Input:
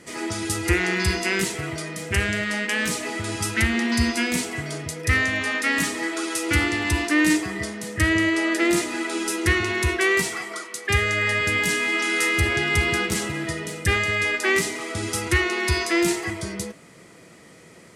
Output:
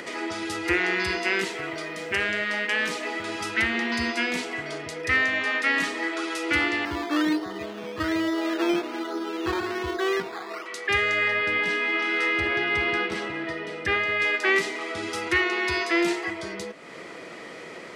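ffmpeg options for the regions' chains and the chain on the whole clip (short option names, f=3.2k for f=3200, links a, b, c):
-filter_complex "[0:a]asettb=1/sr,asplit=3[a][b][c];[a]atrim=end=1.354[d];[b]atrim=start=1.35:end=3.44,asetpts=PTS-STARTPTS,afade=t=in:d=0.004:c=qsin,afade=t=out:st=2.086:d=0.004:c=qsin,highpass=100,acrusher=bits=9:dc=4:mix=0:aa=0.000001[e];[c]atrim=start=3.436[f];[d][e]acrossfade=d=0.004:c1=hsin:c2=qsin[g];[g][f]acrossfade=d=0.004:c1=qsin:c2=hsin,asettb=1/sr,asplit=3[h][i][j];[h]atrim=end=6.854[k];[i]atrim=start=6.85:end=10.66,asetpts=PTS-STARTPTS,afade=t=in:d=0.004:c=qsin,afade=t=out:st=3.806:d=0.004:c=qsin,lowpass=f=1.5k:w=0.5412,lowpass=f=1.5k:w=1.3066,acrusher=samples=12:mix=1:aa=0.000001:lfo=1:lforange=7.2:lforate=1.2[l];[j]atrim=start=10.656[m];[k][l]acrossfade=d=0.004:c1=hsin:c2=qsin[n];[n][m]acrossfade=d=0.004:c1=qsin:c2=hsin,asettb=1/sr,asplit=3[o][p][q];[o]atrim=end=11.284[r];[p]atrim=start=11.28:end=14.2,asetpts=PTS-STARTPTS,afade=t=in:d=0.004:c=qsin,afade=t=out:st=2.916:d=0.004:c=qsin,aemphasis=mode=reproduction:type=50kf,bandreject=f=6.9k:w=11[s];[q]atrim=start=14.196[t];[r][s]acrossfade=d=0.004:c1=hsin:c2=qsin[u];[u][t]acrossfade=d=0.004:c1=qsin:c2=hsin,acrossover=split=280 4800:gain=0.158 1 0.141[v][w][x];[v][w][x]amix=inputs=3:normalize=0,acompressor=mode=upward:threshold=-29dB:ratio=2.5"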